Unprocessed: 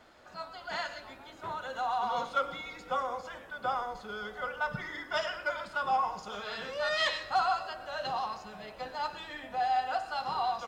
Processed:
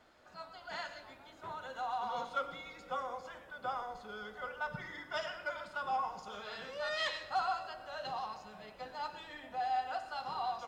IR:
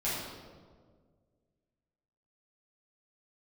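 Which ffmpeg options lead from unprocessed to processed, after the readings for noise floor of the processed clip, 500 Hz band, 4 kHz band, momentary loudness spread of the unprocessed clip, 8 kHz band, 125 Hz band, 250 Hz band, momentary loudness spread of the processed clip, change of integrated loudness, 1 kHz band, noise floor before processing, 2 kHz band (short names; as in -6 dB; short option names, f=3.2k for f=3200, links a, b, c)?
-57 dBFS, -6.0 dB, -6.5 dB, 13 LU, -6.5 dB, -6.0 dB, -6.0 dB, 13 LU, -6.0 dB, -6.0 dB, -51 dBFS, -6.5 dB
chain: -filter_complex "[0:a]asplit=2[a][b];[1:a]atrim=start_sample=2205[c];[b][c]afir=irnorm=-1:irlink=0,volume=-19.5dB[d];[a][d]amix=inputs=2:normalize=0,volume=-7dB"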